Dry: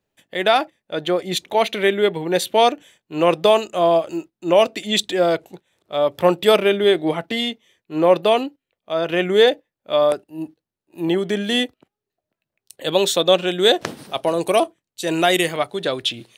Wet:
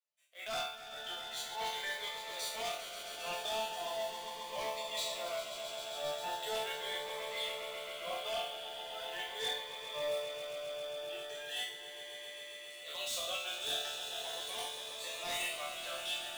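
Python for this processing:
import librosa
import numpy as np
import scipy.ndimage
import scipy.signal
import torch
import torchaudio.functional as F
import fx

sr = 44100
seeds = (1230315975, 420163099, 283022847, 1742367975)

p1 = scipy.ndimage.median_filter(x, 3, mode='constant')
p2 = scipy.signal.sosfilt(scipy.signal.butter(4, 650.0, 'highpass', fs=sr, output='sos'), p1)
p3 = fx.high_shelf(p2, sr, hz=2800.0, db=6.0)
p4 = fx.resonator_bank(p3, sr, root=50, chord='minor', decay_s=0.63)
p5 = fx.quant_float(p4, sr, bits=2)
p6 = np.clip(p5, -10.0 ** (-35.0 / 20.0), 10.0 ** (-35.0 / 20.0))
p7 = fx.transient(p6, sr, attack_db=-7, sustain_db=-3)
p8 = p7 + fx.echo_swell(p7, sr, ms=134, loudest=5, wet_db=-11, dry=0)
p9 = fx.notch_cascade(p8, sr, direction='rising', hz=0.39)
y = p9 * librosa.db_to_amplitude(4.0)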